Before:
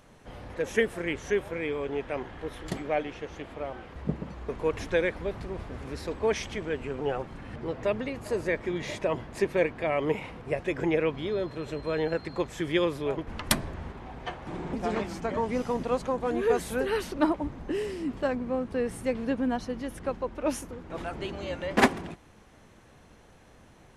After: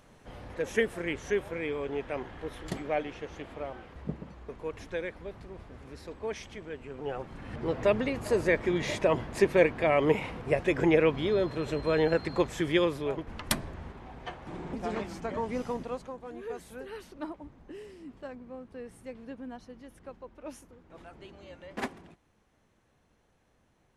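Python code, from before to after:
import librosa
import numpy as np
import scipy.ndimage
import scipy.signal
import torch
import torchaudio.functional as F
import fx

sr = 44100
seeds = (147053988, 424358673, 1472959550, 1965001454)

y = fx.gain(x, sr, db=fx.line((3.58, -2.0), (4.62, -9.0), (6.85, -9.0), (7.73, 3.0), (12.41, 3.0), (13.35, -4.0), (15.7, -4.0), (16.21, -14.0)))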